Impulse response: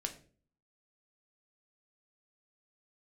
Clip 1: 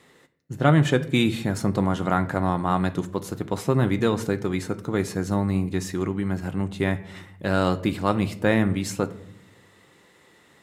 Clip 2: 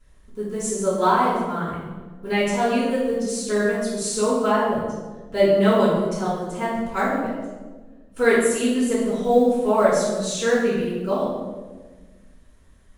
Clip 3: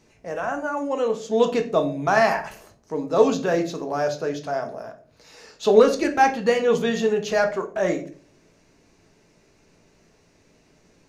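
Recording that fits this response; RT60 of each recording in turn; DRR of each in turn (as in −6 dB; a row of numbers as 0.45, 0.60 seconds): 3; non-exponential decay, 1.4 s, 0.45 s; 9.0, −11.5, 4.0 decibels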